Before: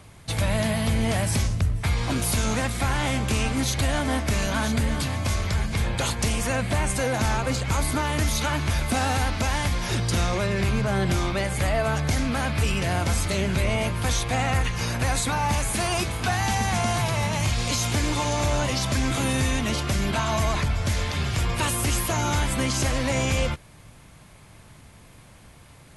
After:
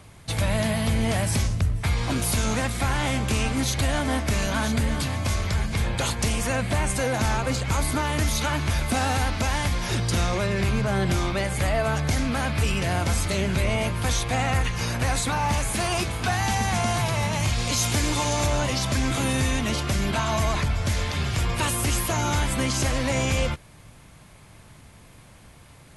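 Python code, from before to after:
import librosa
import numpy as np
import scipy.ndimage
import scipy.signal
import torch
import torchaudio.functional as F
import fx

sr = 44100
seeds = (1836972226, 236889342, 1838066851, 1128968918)

y = fx.doppler_dist(x, sr, depth_ms=0.1, at=(14.97, 16.28))
y = fx.high_shelf(y, sr, hz=4700.0, db=5.0, at=(17.76, 18.47))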